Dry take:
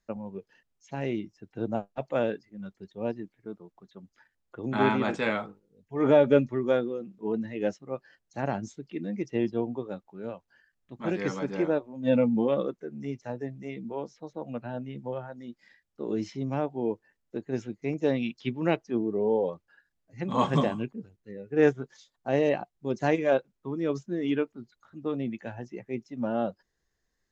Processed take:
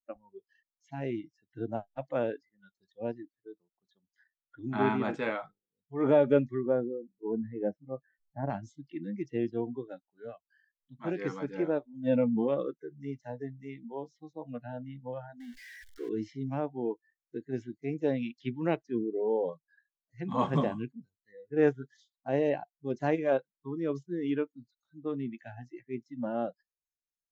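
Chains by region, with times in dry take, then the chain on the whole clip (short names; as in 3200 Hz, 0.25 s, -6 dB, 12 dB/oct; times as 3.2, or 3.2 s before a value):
6.66–8.5 LPF 1100 Hz + low shelf 100 Hz +7.5 dB
15.4–16.09 zero-crossing step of -37.5 dBFS + tone controls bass -5 dB, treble 0 dB
whole clip: spectral noise reduction 26 dB; high shelf 3300 Hz -11 dB; gain -3 dB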